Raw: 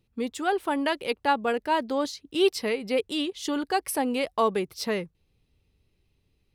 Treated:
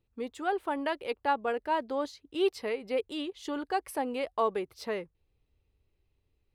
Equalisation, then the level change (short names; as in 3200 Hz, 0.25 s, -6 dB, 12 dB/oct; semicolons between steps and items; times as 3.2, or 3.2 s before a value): bell 180 Hz -9.5 dB 1.3 oct; high shelf 2600 Hz -11 dB; notch 5500 Hz, Q 20; -2.5 dB